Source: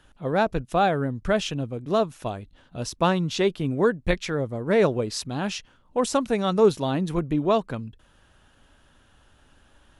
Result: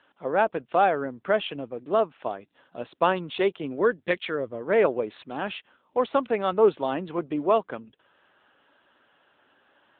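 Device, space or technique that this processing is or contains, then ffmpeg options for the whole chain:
telephone: -filter_complex "[0:a]asplit=3[a][b][c];[a]afade=t=out:st=3.79:d=0.02[d];[b]equalizer=f=100:t=o:w=0.33:g=12,equalizer=f=800:t=o:w=0.33:g=-10,equalizer=f=3.15k:t=o:w=0.33:g=4,equalizer=f=5k:t=o:w=0.33:g=10,afade=t=in:st=3.79:d=0.02,afade=t=out:st=4.61:d=0.02[e];[c]afade=t=in:st=4.61:d=0.02[f];[d][e][f]amix=inputs=3:normalize=0,highpass=360,lowpass=3.5k,volume=1.5dB" -ar 8000 -c:a libopencore_amrnb -b:a 10200

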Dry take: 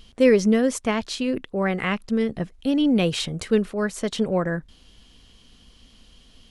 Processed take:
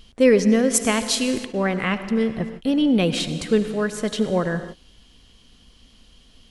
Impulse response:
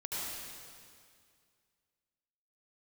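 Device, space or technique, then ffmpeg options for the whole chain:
keyed gated reverb: -filter_complex "[0:a]asplit=3[a][b][c];[1:a]atrim=start_sample=2205[d];[b][d]afir=irnorm=-1:irlink=0[e];[c]apad=whole_len=286811[f];[e][f]sidechaingate=range=-33dB:threshold=-41dB:ratio=16:detection=peak,volume=-12dB[g];[a][g]amix=inputs=2:normalize=0,asplit=3[h][i][j];[h]afade=t=out:st=0.73:d=0.02[k];[i]aemphasis=mode=production:type=75kf,afade=t=in:st=0.73:d=0.02,afade=t=out:st=1.44:d=0.02[l];[j]afade=t=in:st=1.44:d=0.02[m];[k][l][m]amix=inputs=3:normalize=0"

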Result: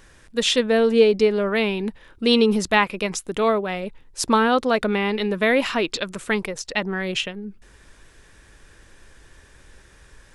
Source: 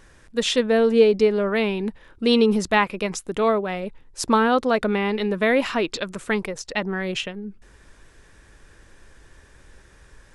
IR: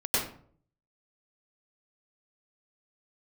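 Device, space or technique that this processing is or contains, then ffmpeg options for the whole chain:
presence and air boost: -af "equalizer=f=3.2k:t=o:w=1.5:g=3,highshelf=f=10k:g=6.5"

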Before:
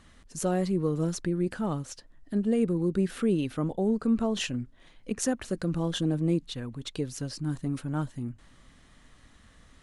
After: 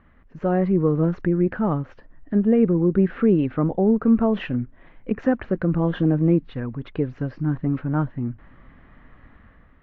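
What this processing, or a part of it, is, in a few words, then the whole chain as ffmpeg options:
action camera in a waterproof case: -af "lowpass=f=2.1k:w=0.5412,lowpass=f=2.1k:w=1.3066,dynaudnorm=f=130:g=7:m=7dB,volume=1dB" -ar 16000 -c:a aac -b:a 48k

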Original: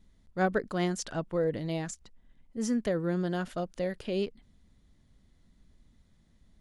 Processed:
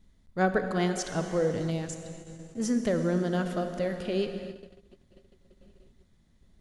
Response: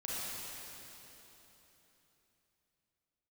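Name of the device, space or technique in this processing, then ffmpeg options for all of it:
keyed gated reverb: -filter_complex "[0:a]asplit=3[a][b][c];[1:a]atrim=start_sample=2205[d];[b][d]afir=irnorm=-1:irlink=0[e];[c]apad=whole_len=291229[f];[e][f]sidechaingate=range=-33dB:threshold=-58dB:ratio=16:detection=peak,volume=-7dB[g];[a][g]amix=inputs=2:normalize=0,asettb=1/sr,asplit=3[h][i][j];[h]atrim=end=1.704[k];[i]atrim=start=1.7:end=2.6,asetpts=PTS-STARTPTS,afade=t=in:d=0.004:c=qsin,afade=t=out:st=0.896:d=0.004:c=qsin,equalizer=f=1.1k:w=0.31:g=-5.5[l];[j]atrim=start=2.596[m];[k][l]acrossfade=d=0.004:c1=hsin:c2=qsin[n];[n][m]acrossfade=d=0.004:c1=qsin:c2=hsin"

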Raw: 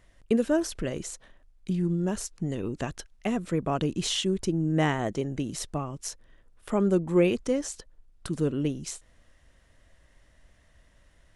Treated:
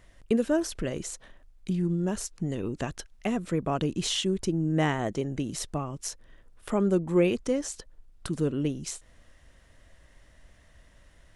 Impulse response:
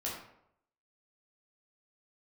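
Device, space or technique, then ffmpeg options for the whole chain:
parallel compression: -filter_complex "[0:a]asplit=2[a][b];[b]acompressor=threshold=-41dB:ratio=6,volume=-2.5dB[c];[a][c]amix=inputs=2:normalize=0,volume=-1.5dB"

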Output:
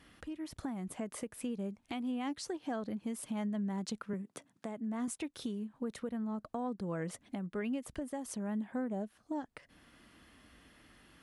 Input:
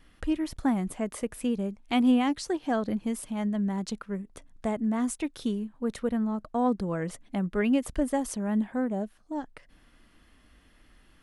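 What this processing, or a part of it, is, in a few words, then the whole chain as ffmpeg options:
podcast mastering chain: -filter_complex "[0:a]asettb=1/sr,asplit=3[a][b][c];[a]atrim=end=4.134[d];[b]atrim=start=4.13:end=5.08,asetpts=PTS-STARTPTS,afade=t=in:d=0.004:c=qsin,afade=t=out:st=0.946:d=0.004:c=qsin,highpass=f=130:w=0.5412,highpass=f=130:w=1.3066[e];[c]atrim=start=5.076[f];[d][e]acrossfade=d=0.004:c1=hsin:c2=qsin[g];[g][f]acrossfade=d=0.004:c1=qsin:c2=hsin,highpass=80,acompressor=threshold=-38dB:ratio=3,alimiter=level_in=6dB:limit=-24dB:level=0:latency=1:release=442,volume=-6dB,volume=2dB" -ar 32000 -c:a libmp3lame -b:a 128k

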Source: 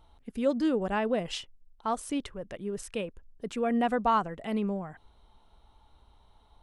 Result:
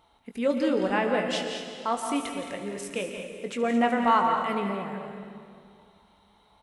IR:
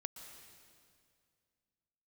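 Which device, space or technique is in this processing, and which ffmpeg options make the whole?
stadium PA: -filter_complex "[0:a]highpass=f=180:p=1,lowshelf=f=140:g=-4,equalizer=f=2.1k:t=o:w=0.49:g=6,aecho=1:1:172|218.7:0.316|0.282[a];[1:a]atrim=start_sample=2205[b];[a][b]afir=irnorm=-1:irlink=0,aecho=1:1:21|73:0.376|0.168,volume=6dB"

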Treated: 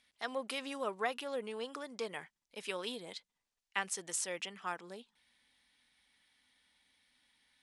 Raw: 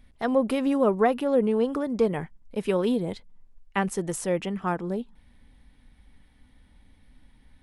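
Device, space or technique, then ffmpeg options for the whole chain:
piezo pickup straight into a mixer: -af "lowpass=5.8k,aderivative,volume=6.5dB"

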